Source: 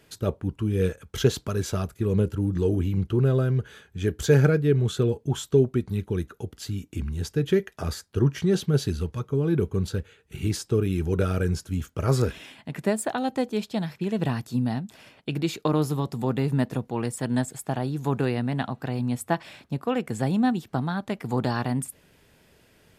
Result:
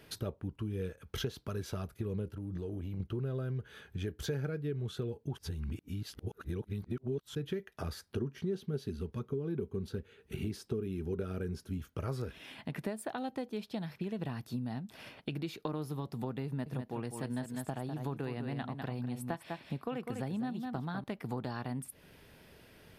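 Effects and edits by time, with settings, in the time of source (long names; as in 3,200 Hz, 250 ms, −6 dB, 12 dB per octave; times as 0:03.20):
0:02.27–0:03.00: downward compressor, threshold −29 dBFS
0:05.37–0:07.35: reverse
0:08.12–0:11.78: hollow resonant body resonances 230/390 Hz, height 9 dB
0:16.46–0:21.04: single-tap delay 200 ms −8 dB
whole clip: parametric band 7,300 Hz −9.5 dB 0.43 octaves; downward compressor 4 to 1, threshold −38 dBFS; level +1 dB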